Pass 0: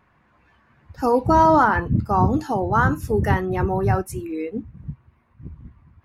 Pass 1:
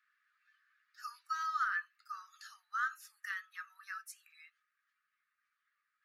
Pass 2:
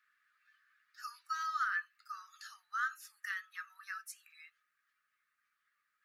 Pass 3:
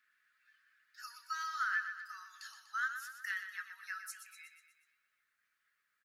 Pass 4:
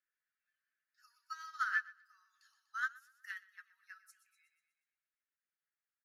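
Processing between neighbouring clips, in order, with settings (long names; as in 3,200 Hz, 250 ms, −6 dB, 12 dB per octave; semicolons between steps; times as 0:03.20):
Chebyshev high-pass with heavy ripple 1,200 Hz, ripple 6 dB; level −8.5 dB
dynamic equaliser 770 Hz, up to −6 dB, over −51 dBFS, Q 1; level +2 dB
notch filter 1,200 Hz, Q 6.8; on a send: repeating echo 122 ms, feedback 54%, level −9 dB; on the sum: level +1 dB
expander for the loud parts 2.5 to 1, over −46 dBFS; level +2.5 dB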